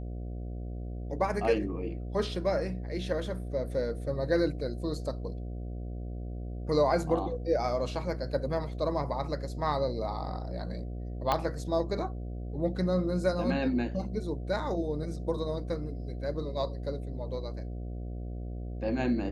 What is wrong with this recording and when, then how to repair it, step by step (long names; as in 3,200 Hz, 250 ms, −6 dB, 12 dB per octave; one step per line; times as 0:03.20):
mains buzz 60 Hz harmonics 12 −37 dBFS
0:11.32: click −13 dBFS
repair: click removal
hum removal 60 Hz, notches 12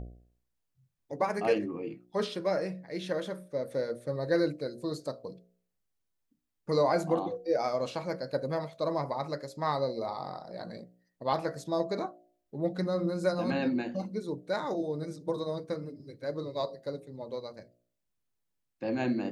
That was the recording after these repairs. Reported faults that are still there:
0:11.32: click